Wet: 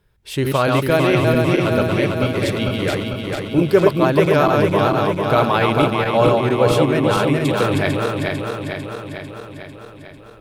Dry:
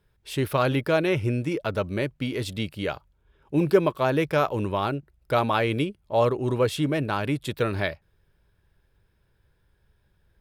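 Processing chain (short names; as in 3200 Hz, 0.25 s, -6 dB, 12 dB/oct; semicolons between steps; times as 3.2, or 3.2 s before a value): regenerating reverse delay 0.224 s, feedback 78%, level -2.5 dB; gain +5 dB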